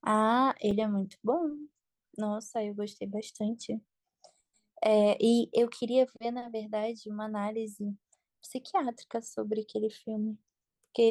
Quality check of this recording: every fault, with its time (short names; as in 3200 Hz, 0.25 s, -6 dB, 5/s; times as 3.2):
0.71 gap 3 ms